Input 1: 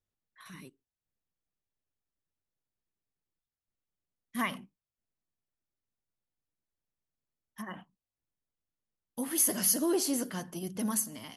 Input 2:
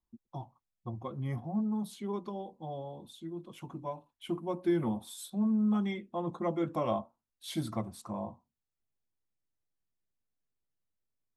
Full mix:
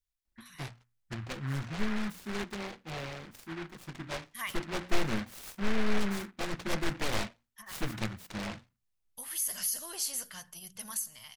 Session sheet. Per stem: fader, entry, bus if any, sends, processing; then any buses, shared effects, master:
+1.5 dB, 0.00 s, no send, amplifier tone stack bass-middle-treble 10-0-10; peak limiter -23 dBFS, peak gain reduction 9.5 dB
0.0 dB, 0.25 s, no send, one-sided wavefolder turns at -32.5 dBFS; hum notches 60/120/180/240 Hz; delay time shaken by noise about 1.4 kHz, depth 0.27 ms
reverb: none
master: bass shelf 60 Hz +11 dB

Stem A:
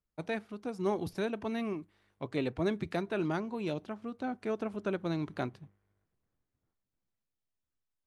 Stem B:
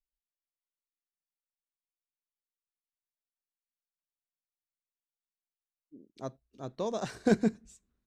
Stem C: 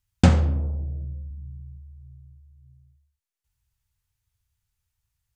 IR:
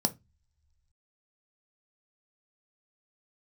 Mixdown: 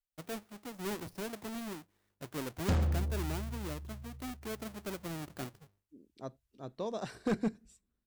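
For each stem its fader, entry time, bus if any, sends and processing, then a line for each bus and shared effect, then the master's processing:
-11.0 dB, 0.00 s, no send, square wave that keeps the level; gate with hold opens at -59 dBFS; treble shelf 9 kHz +7.5 dB
-4.0 dB, 0.00 s, no send, band-stop 6.5 kHz, Q 5.3
-8.5 dB, 2.45 s, no send, none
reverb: none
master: overload inside the chain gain 25 dB

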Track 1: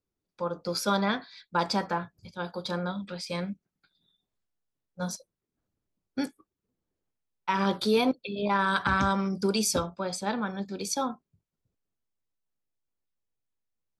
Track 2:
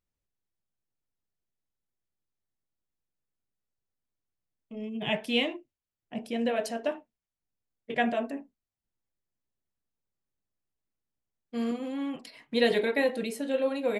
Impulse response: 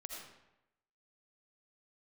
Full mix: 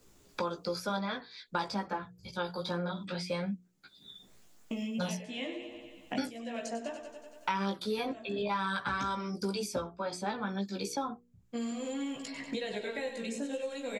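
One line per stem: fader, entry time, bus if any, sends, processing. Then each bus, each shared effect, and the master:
-2.0 dB, 0.00 s, no send, no echo send, none
-9.0 dB, 0.00 s, no send, echo send -10 dB, compression 2:1, threshold -40 dBFS, peak gain reduction 11.5 dB; resonant low-pass 7.2 kHz, resonance Q 4.9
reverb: none
echo: feedback delay 94 ms, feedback 52%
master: hum notches 60/120/180/240/300/360/420/480 Hz; chorus voices 2, 0.52 Hz, delay 16 ms, depth 1.6 ms; three bands compressed up and down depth 100%

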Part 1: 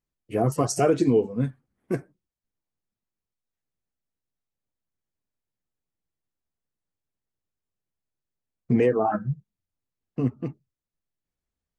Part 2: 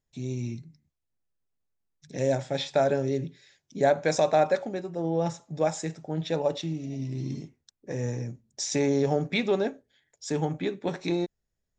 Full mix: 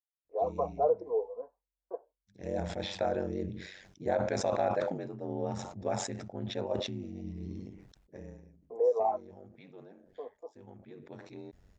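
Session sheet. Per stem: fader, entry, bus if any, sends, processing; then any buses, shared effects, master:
-3.5 dB, 0.00 s, no send, Chebyshev band-pass 470–1000 Hz, order 3; gate with hold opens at -60 dBFS
8.15 s -5 dB -> 8.52 s -16 dB, 0.25 s, no send, low-pass 2 kHz 6 dB/octave; ring modulator 47 Hz; decay stretcher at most 52 dB/s; auto duck -8 dB, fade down 1.15 s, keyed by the first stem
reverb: none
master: none

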